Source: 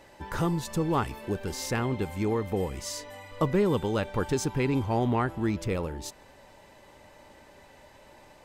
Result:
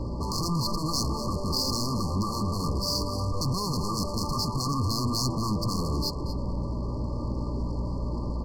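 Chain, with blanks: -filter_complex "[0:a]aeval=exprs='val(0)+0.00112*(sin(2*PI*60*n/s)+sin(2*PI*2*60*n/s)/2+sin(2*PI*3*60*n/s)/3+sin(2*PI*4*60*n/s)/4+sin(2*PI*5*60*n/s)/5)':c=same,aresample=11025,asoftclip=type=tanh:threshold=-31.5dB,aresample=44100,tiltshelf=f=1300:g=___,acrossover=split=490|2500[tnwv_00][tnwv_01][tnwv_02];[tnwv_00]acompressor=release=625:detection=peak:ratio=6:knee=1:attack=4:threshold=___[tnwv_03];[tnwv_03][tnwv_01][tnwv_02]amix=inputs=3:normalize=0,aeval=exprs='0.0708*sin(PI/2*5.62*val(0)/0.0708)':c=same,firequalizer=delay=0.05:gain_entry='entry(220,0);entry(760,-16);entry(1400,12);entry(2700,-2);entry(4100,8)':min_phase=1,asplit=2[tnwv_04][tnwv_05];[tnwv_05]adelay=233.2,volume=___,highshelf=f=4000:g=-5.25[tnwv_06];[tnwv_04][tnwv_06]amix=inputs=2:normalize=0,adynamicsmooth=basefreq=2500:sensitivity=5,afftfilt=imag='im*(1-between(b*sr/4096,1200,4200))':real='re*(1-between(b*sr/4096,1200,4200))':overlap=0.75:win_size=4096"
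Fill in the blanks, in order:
8, -38dB, -7dB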